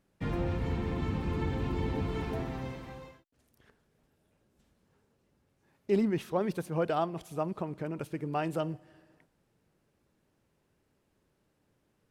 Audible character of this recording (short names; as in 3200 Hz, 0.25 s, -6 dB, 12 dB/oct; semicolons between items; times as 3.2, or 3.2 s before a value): noise floor -75 dBFS; spectral tilt -6.0 dB/oct